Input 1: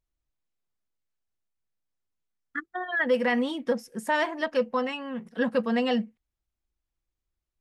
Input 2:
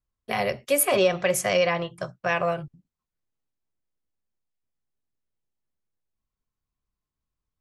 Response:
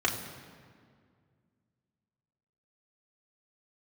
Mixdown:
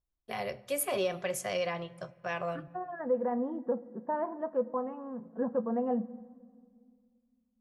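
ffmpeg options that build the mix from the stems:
-filter_complex "[0:a]lowpass=f=1.1k:w=0.5412,lowpass=f=1.1k:w=1.3066,volume=-6dB,asplit=2[a][b];[b]volume=-21.5dB[c];[1:a]volume=-11dB,asplit=2[d][e];[e]volume=-24dB[f];[2:a]atrim=start_sample=2205[g];[c][f]amix=inputs=2:normalize=0[h];[h][g]afir=irnorm=-1:irlink=0[i];[a][d][i]amix=inputs=3:normalize=0"

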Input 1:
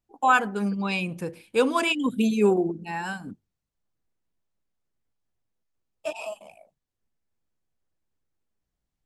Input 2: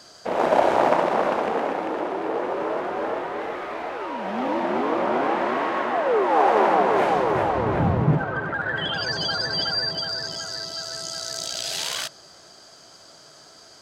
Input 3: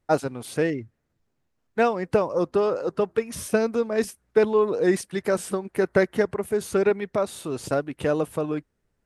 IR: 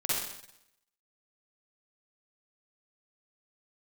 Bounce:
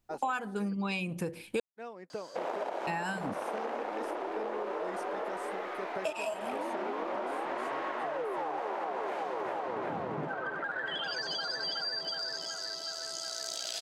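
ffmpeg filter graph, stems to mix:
-filter_complex "[0:a]acontrast=29,volume=1.5dB,asplit=3[a][b][c];[a]atrim=end=1.6,asetpts=PTS-STARTPTS,afade=t=out:st=1.596:d=0.004:c=hsin[d];[b]atrim=start=1.6:end=2.87,asetpts=PTS-STARTPTS,volume=0[e];[c]atrim=start=2.87,asetpts=PTS-STARTPTS,afade=t=in:d=0.004:c=hsin[f];[d][e][f]concat=n=3:v=0:a=1[g];[1:a]highpass=320,acompressor=threshold=-22dB:ratio=6,adelay=2100,volume=-6.5dB[h];[2:a]highpass=200,volume=-18.5dB[i];[g][h][i]amix=inputs=3:normalize=0,acompressor=threshold=-31dB:ratio=8"

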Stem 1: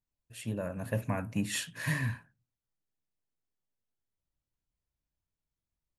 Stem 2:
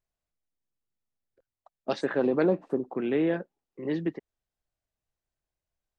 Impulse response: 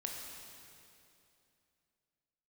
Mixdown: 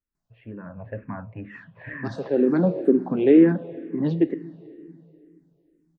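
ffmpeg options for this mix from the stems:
-filter_complex "[0:a]lowpass=f=1.9k:w=0.5412,lowpass=f=1.9k:w=1.3066,volume=1dB,asplit=3[a][b][c];[b]volume=-18.5dB[d];[1:a]equalizer=f=230:t=o:w=2.8:g=12,adelay=150,volume=1dB,asplit=2[e][f];[f]volume=-10dB[g];[c]apad=whole_len=270407[h];[e][h]sidechaincompress=threshold=-38dB:ratio=8:attack=16:release=1130[i];[2:a]atrim=start_sample=2205[j];[d][g]amix=inputs=2:normalize=0[k];[k][j]afir=irnorm=-1:irlink=0[l];[a][i][l]amix=inputs=3:normalize=0,asplit=2[m][n];[n]afreqshift=-2.1[o];[m][o]amix=inputs=2:normalize=1"

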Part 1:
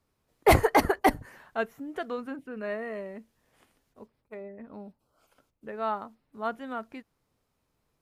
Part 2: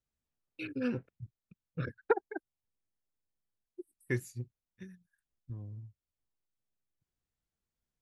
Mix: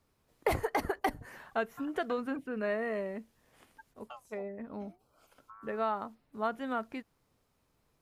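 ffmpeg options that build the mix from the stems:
-filter_complex "[0:a]volume=2dB,asplit=2[a][b];[1:a]acompressor=threshold=-44dB:ratio=2,aeval=exprs='val(0)*sin(2*PI*830*n/s+830*0.5/0.53*sin(2*PI*0.53*n/s))':c=same,volume=-5dB[c];[b]apad=whole_len=353421[d];[c][d]sidechaincompress=threshold=-33dB:ratio=8:attack=16:release=163[e];[a][e]amix=inputs=2:normalize=0,acompressor=threshold=-27dB:ratio=10"

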